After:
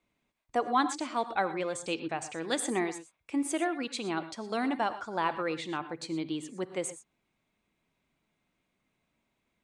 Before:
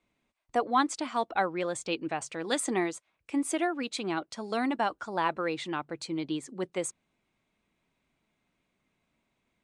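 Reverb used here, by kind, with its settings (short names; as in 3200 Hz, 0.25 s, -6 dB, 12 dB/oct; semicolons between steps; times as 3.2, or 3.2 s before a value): non-linear reverb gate 0.14 s rising, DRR 11.5 dB; gain -1.5 dB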